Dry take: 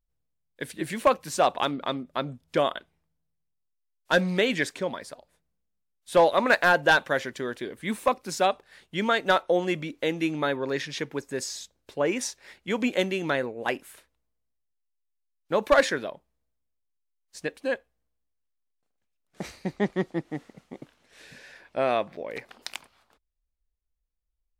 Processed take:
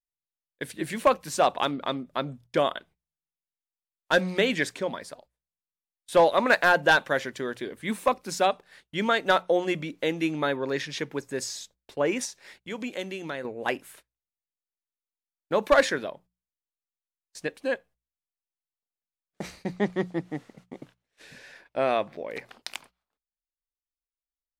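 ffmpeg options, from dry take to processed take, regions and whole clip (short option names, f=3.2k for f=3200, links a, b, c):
-filter_complex "[0:a]asettb=1/sr,asplit=3[a][b][c];[a]atrim=end=12.254[d];[b]atrim=start=12.25:end=13.45,asetpts=PTS-STARTPTS,afade=t=in:d=0.004:c=qsin,afade=t=out:st=1.196:d=0.004:c=qsin,equalizer=f=7.7k:t=o:w=2.4:g=3,acompressor=threshold=-44dB:ratio=1.5:attack=3.2:release=140:knee=1:detection=peak[e];[c]atrim=start=13.446[f];[d][e]acrossfade=d=0.004:c1=hsin:c2=qsin[g];[g][f]acrossfade=d=0.004:c1=qsin:c2=hsin,agate=range=-22dB:threshold=-51dB:ratio=16:detection=peak,bandreject=f=60:t=h:w=6,bandreject=f=120:t=h:w=6,bandreject=f=180:t=h:w=6"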